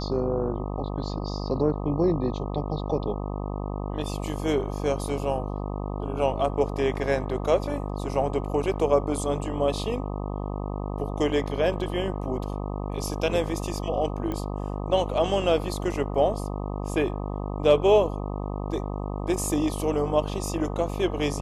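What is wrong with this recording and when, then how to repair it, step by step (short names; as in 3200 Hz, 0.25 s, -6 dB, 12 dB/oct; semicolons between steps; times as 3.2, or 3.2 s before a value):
buzz 50 Hz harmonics 25 -31 dBFS
14.32 pop -19 dBFS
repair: de-click; de-hum 50 Hz, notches 25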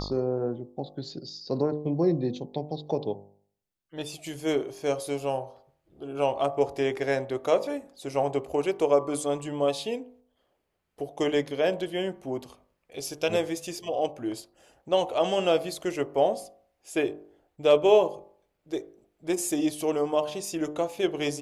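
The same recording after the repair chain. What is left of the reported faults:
none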